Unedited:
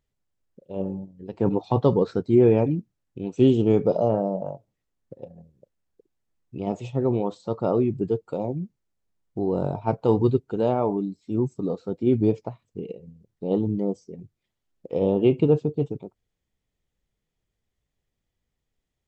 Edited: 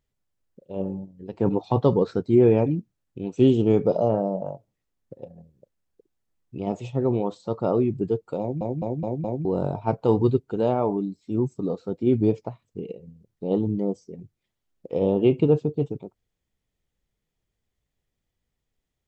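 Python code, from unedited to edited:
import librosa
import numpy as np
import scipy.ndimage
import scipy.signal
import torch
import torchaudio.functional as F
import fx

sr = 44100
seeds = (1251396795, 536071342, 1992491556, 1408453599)

y = fx.edit(x, sr, fx.stutter_over(start_s=8.4, slice_s=0.21, count=5), tone=tone)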